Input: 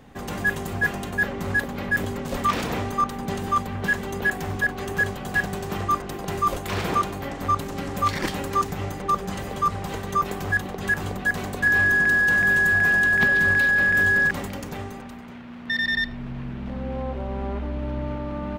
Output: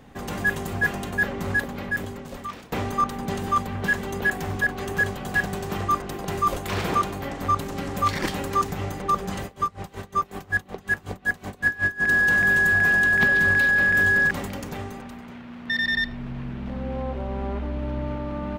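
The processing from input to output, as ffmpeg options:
-filter_complex "[0:a]asplit=3[s0][s1][s2];[s0]afade=t=out:st=9.45:d=0.02[s3];[s1]aeval=exprs='val(0)*pow(10,-23*(0.5-0.5*cos(2*PI*5.4*n/s))/20)':c=same,afade=t=in:st=9.45:d=0.02,afade=t=out:st=12.07:d=0.02[s4];[s2]afade=t=in:st=12.07:d=0.02[s5];[s3][s4][s5]amix=inputs=3:normalize=0,asplit=2[s6][s7];[s6]atrim=end=2.72,asetpts=PTS-STARTPTS,afade=t=out:st=1.48:d=1.24:silence=0.0707946[s8];[s7]atrim=start=2.72,asetpts=PTS-STARTPTS,afade=t=in:d=0.004:c=hsin:silence=0.0707946[s9];[s8][s9]concat=n=2:v=0:a=1"

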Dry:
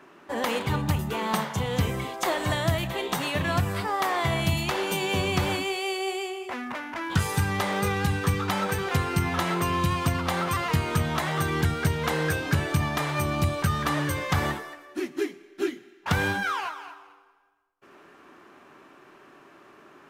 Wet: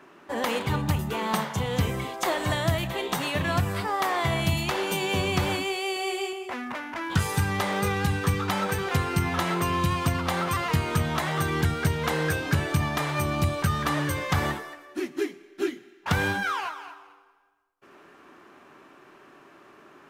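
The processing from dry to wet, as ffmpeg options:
-filter_complex "[0:a]asettb=1/sr,asplit=3[s0][s1][s2];[s0]atrim=end=5.934[s3];[s1]atrim=start=5.93:end=6.33,asetpts=PTS-STARTPTS,afade=t=in:d=0.004:c=qsin,afade=t=out:st=0.396:d=0.004:c=qsin,asplit=2[s4][s5];[s5]adelay=33,volume=0.631[s6];[s4][s6]amix=inputs=2:normalize=0,atrim=end_sample=17640[s7];[s2]atrim=start=6.326[s8];[s3][s7]acrossfade=d=0.004:c1=hsin:c2=qsin[s9];[s9][s8]acrossfade=d=0.004:c1=qsin:c2=hsin"

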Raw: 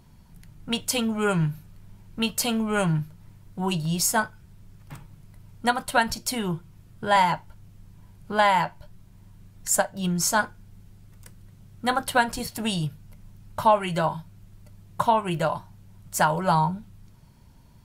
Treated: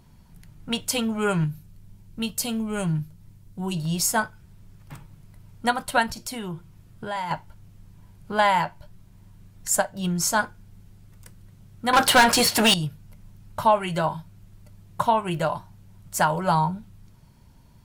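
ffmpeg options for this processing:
-filter_complex "[0:a]asettb=1/sr,asplit=3[s0][s1][s2];[s0]atrim=end=1.444[s3];[s1]atrim=start=1.44:end=3.77,asetpts=PTS-STARTPTS,afade=t=in:d=0.004:c=qsin,afade=t=out:st=2.326:d=0.004:c=qsin,equalizer=f=1200:w=0.39:g=-8[s4];[s2]atrim=start=3.766[s5];[s3][s4]acrossfade=d=0.004:c1=hsin:c2=qsin[s6];[s6][s5]acrossfade=d=0.004:c1=qsin:c2=hsin,asettb=1/sr,asplit=3[s7][s8][s9];[s7]atrim=end=6.064[s10];[s8]atrim=start=6.06:end=7.31,asetpts=PTS-STARTPTS,afade=t=in:d=0.004:c=qsin,afade=t=out:st=1.246:d=0.004:c=qsin,acompressor=threshold=0.0282:ratio=2.5:attack=3.2:release=140:knee=1:detection=peak[s11];[s9]atrim=start=7.306[s12];[s10][s11]acrossfade=d=0.004:c1=hsin:c2=qsin[s13];[s13][s12]acrossfade=d=0.004:c1=qsin:c2=hsin,asettb=1/sr,asplit=3[s14][s15][s16];[s14]atrim=end=11.934[s17];[s15]atrim=start=11.93:end=12.74,asetpts=PTS-STARTPTS,afade=t=in:d=0.004:c=qsin,afade=t=out:st=0.806:d=0.004:c=qsin,asplit=2[s18][s19];[s19]highpass=f=720:p=1,volume=22.4,asoftclip=type=tanh:threshold=0.398[s20];[s18][s20]amix=inputs=2:normalize=0,lowpass=f=7300:p=1,volume=0.501[s21];[s16]atrim=start=12.736[s22];[s17][s21]acrossfade=d=0.004:c1=hsin:c2=qsin[s23];[s23][s22]acrossfade=d=0.004:c1=qsin:c2=hsin"

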